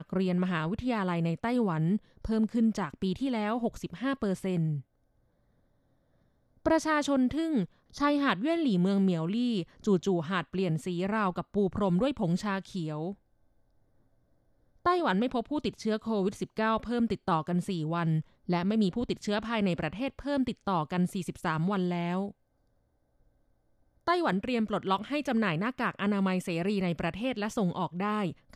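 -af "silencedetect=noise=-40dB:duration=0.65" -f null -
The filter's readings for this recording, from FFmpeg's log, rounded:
silence_start: 4.81
silence_end: 6.66 | silence_duration: 1.85
silence_start: 13.13
silence_end: 14.86 | silence_duration: 1.72
silence_start: 22.31
silence_end: 24.07 | silence_duration: 1.77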